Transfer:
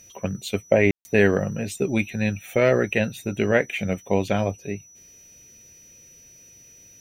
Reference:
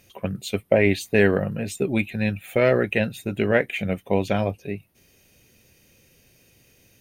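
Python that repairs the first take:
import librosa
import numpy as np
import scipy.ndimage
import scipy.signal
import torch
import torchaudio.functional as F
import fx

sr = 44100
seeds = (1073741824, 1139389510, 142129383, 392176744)

y = fx.notch(x, sr, hz=5900.0, q=30.0)
y = fx.fix_ambience(y, sr, seeds[0], print_start_s=4.82, print_end_s=5.32, start_s=0.91, end_s=1.05)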